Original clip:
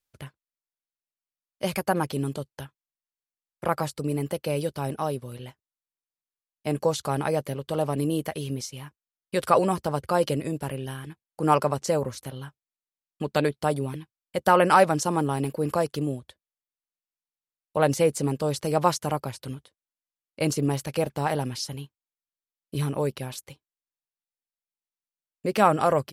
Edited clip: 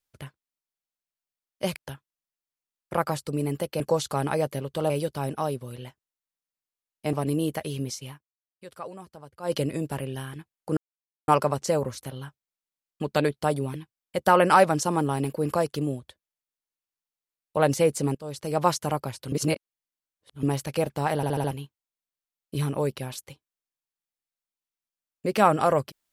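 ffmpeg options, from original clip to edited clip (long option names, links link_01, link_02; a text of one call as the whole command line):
ffmpeg -i in.wav -filter_complex "[0:a]asplit=16[link_01][link_02][link_03][link_04][link_05][link_06][link_07][link_08][link_09][link_10][link_11][link_12][link_13][link_14][link_15][link_16];[link_01]atrim=end=1.762[link_17];[link_02]atrim=start=2.468:end=4.512[link_18];[link_03]atrim=start=6.738:end=7.842[link_19];[link_04]atrim=start=4.508:end=6.742[link_20];[link_05]atrim=start=7.838:end=8.95,asetpts=PTS-STARTPTS,afade=type=out:start_time=0.972:duration=0.14:curve=qua:silence=0.11885[link_21];[link_06]atrim=start=8.95:end=10.1,asetpts=PTS-STARTPTS,volume=-18.5dB[link_22];[link_07]atrim=start=10.1:end=11.48,asetpts=PTS-STARTPTS,afade=type=in:duration=0.14:curve=qua:silence=0.11885,afade=type=out:start_time=1.376:duration=0.004:curve=hsin,apad=pad_dur=0.51[link_23];[link_08]atrim=start=11.48:end=18.35,asetpts=PTS-STARTPTS,afade=type=in:duration=0.004:curve=hsin,afade=type=out:start_time=6.866:duration=0.004:curve=hsin:silence=0.11885[link_24];[link_09]atrim=start=18.35:end=19.522,asetpts=PTS-STARTPTS,afade=type=in:duration=0.55:silence=0.11885[link_25];[link_10]atrim=start=19.518:end=20.632,asetpts=PTS-STARTPTS,areverse[link_26];[link_11]atrim=start=20.628:end=21.432[link_27];[link_12]atrim=start=21.358:end=21.432[link_28];[link_13]atrim=start=21.358:end=21.432[link_29];[link_14]atrim=start=21.358:end=21.432[link_30];[link_15]atrim=start=21.358:end=21.432[link_31];[link_16]atrim=start=21.708[link_32];[link_17][link_18]acrossfade=duration=0.004:curve1=hsin:curve2=hsin[link_33];[link_33][link_19]acrossfade=duration=0.004:curve1=hsin:curve2=hsin[link_34];[link_34][link_20]acrossfade=duration=0.004:curve1=hsin:curve2=hsin[link_35];[link_21][link_22][link_23][link_24][link_25]concat=n=5:v=0:a=1[link_36];[link_35][link_36]acrossfade=duration=0.004:curve1=hsin:curve2=hsin[link_37];[link_37][link_26]acrossfade=duration=0.004:curve1=hsin:curve2=hsin[link_38];[link_38][link_27]acrossfade=duration=0.004:curve1=hsin:curve2=hsin[link_39];[link_39][link_28]acrossfade=duration=0.004:curve1=hsin:curve2=hsin[link_40];[link_40][link_29]acrossfade=duration=0.004:curve1=hsin:curve2=hsin[link_41];[link_41][link_30]acrossfade=duration=0.004:curve1=hsin:curve2=hsin[link_42];[link_42][link_31]acrossfade=duration=0.004:curve1=hsin:curve2=hsin[link_43];[link_43][link_32]acrossfade=duration=0.004:curve1=hsin:curve2=hsin" out.wav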